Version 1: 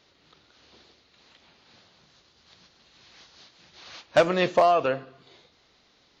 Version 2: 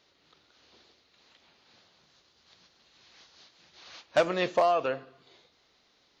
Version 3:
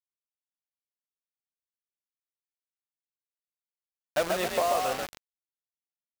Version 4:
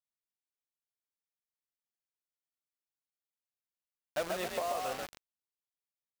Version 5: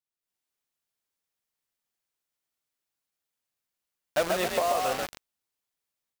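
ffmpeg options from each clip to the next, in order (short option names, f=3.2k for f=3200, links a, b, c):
-af "bass=f=250:g=-4,treble=f=4k:g=1,volume=-4.5dB"
-filter_complex "[0:a]asplit=6[a][b][c][d][e][f];[b]adelay=135,afreqshift=42,volume=-4dB[g];[c]adelay=270,afreqshift=84,volume=-12dB[h];[d]adelay=405,afreqshift=126,volume=-19.9dB[i];[e]adelay=540,afreqshift=168,volume=-27.9dB[j];[f]adelay=675,afreqshift=210,volume=-35.8dB[k];[a][g][h][i][j][k]amix=inputs=6:normalize=0,acrusher=bits=4:mix=0:aa=0.000001,volume=-3.5dB"
-af "alimiter=limit=-19dB:level=0:latency=1:release=225,volume=-6dB"
-af "dynaudnorm=f=180:g=3:m=10dB,volume=-1.5dB"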